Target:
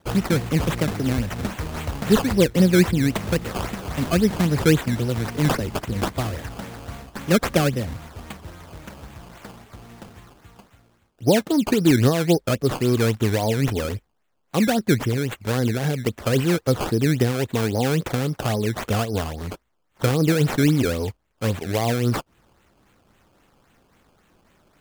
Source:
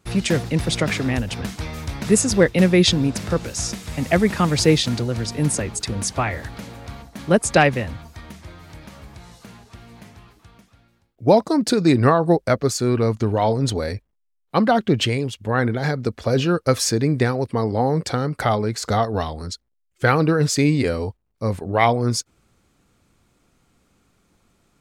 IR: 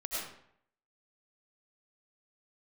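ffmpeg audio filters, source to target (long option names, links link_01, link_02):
-filter_complex "[0:a]acrossover=split=550[link_01][link_02];[link_02]acompressor=threshold=-31dB:ratio=5[link_03];[link_01][link_03]amix=inputs=2:normalize=0,aexciter=amount=8.1:drive=4.8:freq=9300,acrusher=samples=16:mix=1:aa=0.000001:lfo=1:lforange=16:lforate=3.7"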